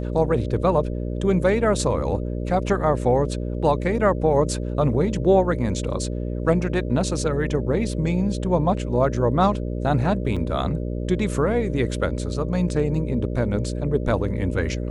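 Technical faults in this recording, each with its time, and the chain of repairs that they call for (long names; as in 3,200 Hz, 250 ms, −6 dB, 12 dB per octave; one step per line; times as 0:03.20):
mains buzz 60 Hz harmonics 10 −27 dBFS
0:10.36–0:10.37: drop-out 5.5 ms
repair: hum removal 60 Hz, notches 10
repair the gap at 0:10.36, 5.5 ms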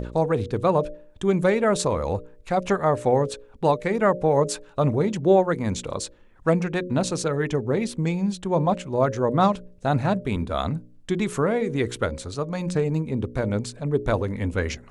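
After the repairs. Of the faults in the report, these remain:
none of them is left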